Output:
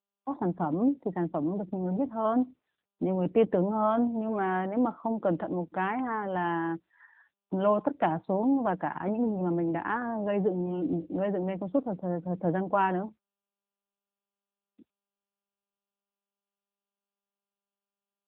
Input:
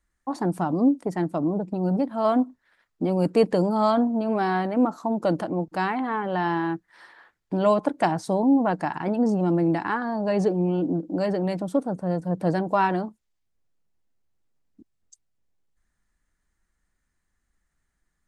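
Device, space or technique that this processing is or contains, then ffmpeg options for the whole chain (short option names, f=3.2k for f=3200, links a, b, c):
mobile call with aggressive noise cancelling: -filter_complex "[0:a]asplit=3[a][b][c];[a]afade=t=out:st=0.6:d=0.02[d];[b]equalizer=f=2.2k:t=o:w=0.23:g=-4,afade=t=in:st=0.6:d=0.02,afade=t=out:st=2.41:d=0.02[e];[c]afade=t=in:st=2.41:d=0.02[f];[d][e][f]amix=inputs=3:normalize=0,highpass=130,afftdn=nr=35:nf=-46,volume=-3.5dB" -ar 8000 -c:a libopencore_amrnb -b:a 10200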